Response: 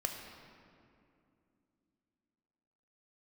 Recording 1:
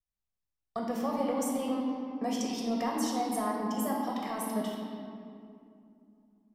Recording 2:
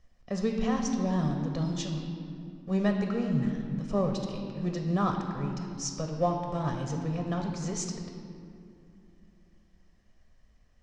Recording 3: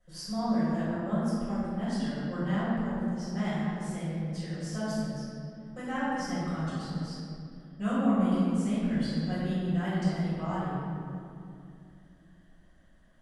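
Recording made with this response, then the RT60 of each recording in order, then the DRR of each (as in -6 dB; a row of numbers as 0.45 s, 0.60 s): 2; 2.6 s, 2.6 s, 2.5 s; -3.0 dB, 3.0 dB, -12.5 dB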